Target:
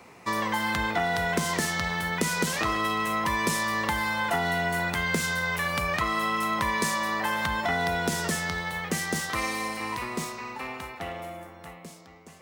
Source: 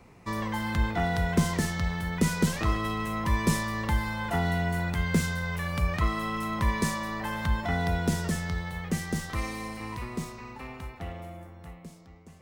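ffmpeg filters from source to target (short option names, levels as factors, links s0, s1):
-af "highpass=f=520:p=1,acompressor=threshold=0.0282:ratio=6,volume=2.66"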